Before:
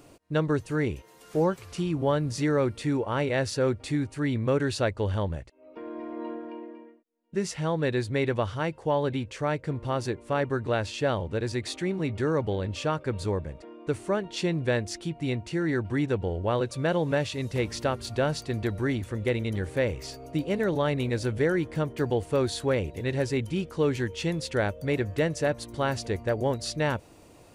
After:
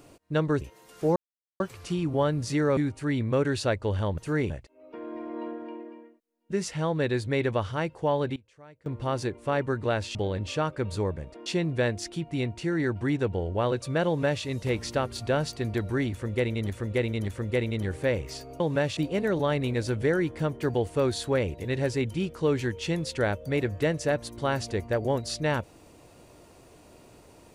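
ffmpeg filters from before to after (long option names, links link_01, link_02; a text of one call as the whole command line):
ffmpeg -i in.wav -filter_complex "[0:a]asplit=14[link_01][link_02][link_03][link_04][link_05][link_06][link_07][link_08][link_09][link_10][link_11][link_12][link_13][link_14];[link_01]atrim=end=0.612[link_15];[link_02]atrim=start=0.928:end=1.48,asetpts=PTS-STARTPTS,afade=type=out:start_time=0.548:duration=0.004:curve=hsin,apad=pad_dur=0.44[link_16];[link_03]atrim=start=1.48:end=2.652,asetpts=PTS-STARTPTS,afade=type=in:duration=0.004:curve=hsin[link_17];[link_04]atrim=start=3.918:end=5.332[link_18];[link_05]atrim=start=0.608:end=0.932[link_19];[link_06]atrim=start=5.328:end=9.19,asetpts=PTS-STARTPTS,afade=type=out:start_time=3.632:duration=0.23:curve=log:silence=0.0749894[link_20];[link_07]atrim=start=9.19:end=9.69,asetpts=PTS-STARTPTS,volume=-22.5dB[link_21];[link_08]atrim=start=9.69:end=10.982,asetpts=PTS-STARTPTS,afade=type=in:duration=0.23:curve=log:silence=0.0749894[link_22];[link_09]atrim=start=12.428:end=13.742[link_23];[link_10]atrim=start=14.348:end=19.592[link_24];[link_11]atrim=start=19.008:end=19.592[link_25];[link_12]atrim=start=19.008:end=20.332[link_26];[link_13]atrim=start=16.958:end=17.332[link_27];[link_14]atrim=start=20.328[link_28];[link_16][link_17]concat=n=2:v=0:a=1[link_29];[link_15][link_29]acrossfade=duration=0.004:curve1=hsin:curve2=hsin[link_30];[link_30][link_18]acrossfade=duration=0.004:curve1=hsin:curve2=hsin[link_31];[link_31][link_19]acrossfade=duration=0.004:curve1=hsin:curve2=hsin[link_32];[link_20][link_21][link_22]concat=n=3:v=0:a=1[link_33];[link_32][link_33]acrossfade=duration=0.004:curve1=hsin:curve2=hsin[link_34];[link_34][link_23]acrossfade=duration=0.004:curve1=hsin:curve2=hsin[link_35];[link_35][link_24]acrossfade=duration=0.004:curve1=hsin:curve2=hsin[link_36];[link_36][link_25]acrossfade=duration=0.004:curve1=hsin:curve2=hsin[link_37];[link_37][link_26]acrossfade=duration=0.004:curve1=hsin:curve2=hsin[link_38];[link_38][link_27]acrossfade=duration=0.004:curve1=hsin:curve2=hsin[link_39];[link_39][link_28]acrossfade=duration=0.004:curve1=hsin:curve2=hsin" out.wav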